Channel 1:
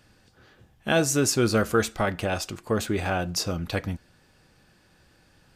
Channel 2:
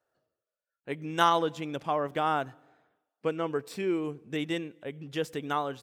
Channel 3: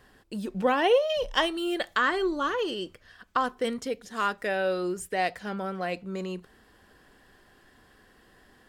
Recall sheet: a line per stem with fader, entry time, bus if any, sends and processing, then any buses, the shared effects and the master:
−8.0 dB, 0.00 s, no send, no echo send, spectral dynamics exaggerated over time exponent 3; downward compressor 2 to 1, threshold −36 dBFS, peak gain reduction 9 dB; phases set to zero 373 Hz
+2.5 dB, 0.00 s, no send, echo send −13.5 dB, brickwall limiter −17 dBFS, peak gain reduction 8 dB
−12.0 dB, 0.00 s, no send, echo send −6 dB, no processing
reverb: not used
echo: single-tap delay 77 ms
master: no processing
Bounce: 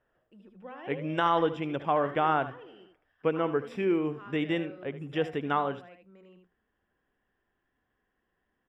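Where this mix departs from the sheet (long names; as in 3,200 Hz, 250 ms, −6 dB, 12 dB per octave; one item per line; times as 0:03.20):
stem 1: muted
stem 3 −12.0 dB → −21.0 dB
master: extra Savitzky-Golay smoothing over 25 samples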